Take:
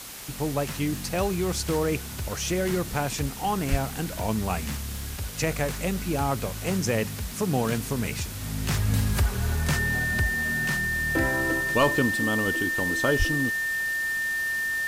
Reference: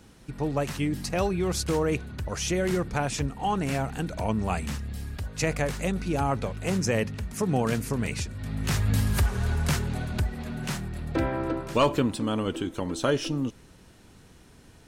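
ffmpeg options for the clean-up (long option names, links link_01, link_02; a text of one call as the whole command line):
ffmpeg -i in.wav -filter_complex "[0:a]adeclick=threshold=4,bandreject=frequency=1800:width=30,asplit=3[link_01][link_02][link_03];[link_01]afade=type=out:start_time=3.7:duration=0.02[link_04];[link_02]highpass=frequency=140:width=0.5412,highpass=frequency=140:width=1.3066,afade=type=in:start_time=3.7:duration=0.02,afade=type=out:start_time=3.82:duration=0.02[link_05];[link_03]afade=type=in:start_time=3.82:duration=0.02[link_06];[link_04][link_05][link_06]amix=inputs=3:normalize=0,asplit=3[link_07][link_08][link_09];[link_07]afade=type=out:start_time=13.18:duration=0.02[link_10];[link_08]highpass=frequency=140:width=0.5412,highpass=frequency=140:width=1.3066,afade=type=in:start_time=13.18:duration=0.02,afade=type=out:start_time=13.3:duration=0.02[link_11];[link_09]afade=type=in:start_time=13.3:duration=0.02[link_12];[link_10][link_11][link_12]amix=inputs=3:normalize=0,afwtdn=0.011" out.wav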